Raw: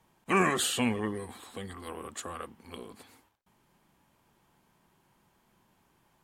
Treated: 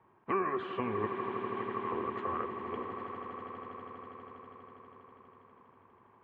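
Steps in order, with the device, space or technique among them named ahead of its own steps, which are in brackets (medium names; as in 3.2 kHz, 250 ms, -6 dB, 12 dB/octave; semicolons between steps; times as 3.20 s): 1.06–1.92 s: Chebyshev band-pass 720–3200 Hz, order 4; bass amplifier (compression 5:1, threshold -35 dBFS, peak gain reduction 13.5 dB; cabinet simulation 85–2200 Hz, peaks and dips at 100 Hz +7 dB, 170 Hz -6 dB, 390 Hz +9 dB, 1.1 kHz +9 dB); echo with a slow build-up 81 ms, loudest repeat 8, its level -13 dB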